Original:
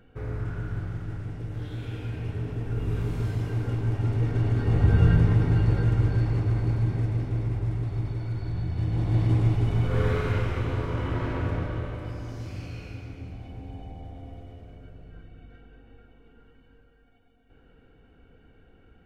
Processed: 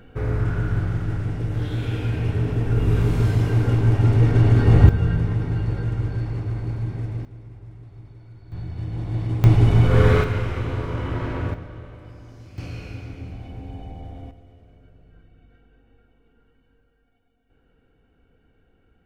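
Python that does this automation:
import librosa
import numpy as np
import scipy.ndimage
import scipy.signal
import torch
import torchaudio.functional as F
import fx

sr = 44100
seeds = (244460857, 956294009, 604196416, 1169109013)

y = fx.gain(x, sr, db=fx.steps((0.0, 9.0), (4.89, -2.0), (7.25, -13.5), (8.52, -2.5), (9.44, 9.0), (10.24, 2.0), (11.54, -7.0), (12.58, 4.0), (14.31, -5.5)))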